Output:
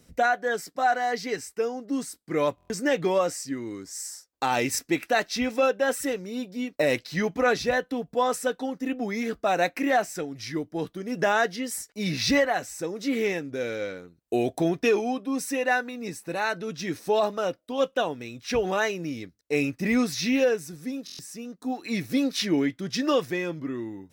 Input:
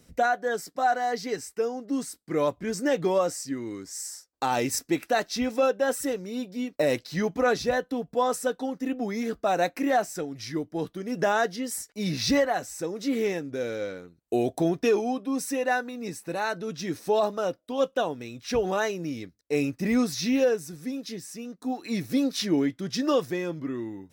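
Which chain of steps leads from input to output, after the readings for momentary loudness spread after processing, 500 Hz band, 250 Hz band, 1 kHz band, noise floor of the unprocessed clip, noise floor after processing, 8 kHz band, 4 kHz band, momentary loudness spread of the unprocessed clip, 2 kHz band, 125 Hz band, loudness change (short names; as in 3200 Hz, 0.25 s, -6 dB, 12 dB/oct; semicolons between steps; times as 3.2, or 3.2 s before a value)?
10 LU, 0.0 dB, 0.0 dB, +0.5 dB, -67 dBFS, -66 dBFS, +0.5 dB, +2.0 dB, 10 LU, +4.0 dB, 0.0 dB, +1.0 dB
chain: dynamic EQ 2300 Hz, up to +6 dB, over -46 dBFS, Q 1.2; stuck buffer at 2.56/21.05, samples 1024, times 5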